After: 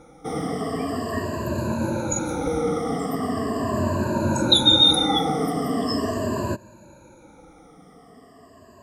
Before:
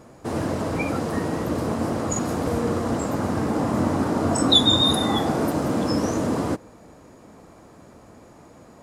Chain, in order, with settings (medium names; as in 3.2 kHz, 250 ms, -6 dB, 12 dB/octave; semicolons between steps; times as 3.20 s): drifting ripple filter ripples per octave 1.4, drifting -0.4 Hz, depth 24 dB; trim -6 dB